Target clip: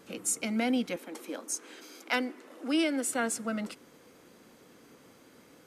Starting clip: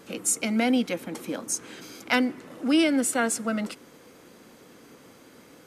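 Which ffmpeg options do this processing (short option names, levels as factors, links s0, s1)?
-filter_complex "[0:a]asettb=1/sr,asplit=3[s0][s1][s2];[s0]atrim=end=0.964[s3];[s1]atrim=start=0.96:end=3.07,asetpts=PTS-STARTPTS,afade=t=in:d=0.004:c=qsin,afade=t=out:st=2.106:d=0.004:c=qsin,highpass=f=270:w=0.5412,highpass=f=270:w=1.3066[s4];[s2]atrim=start=3.066[s5];[s3][s4]acrossfade=d=0.004:c1=hsin:c2=qsin[s6];[s6][s5]acrossfade=d=0.004:c1=qsin:c2=hsin,volume=0.531"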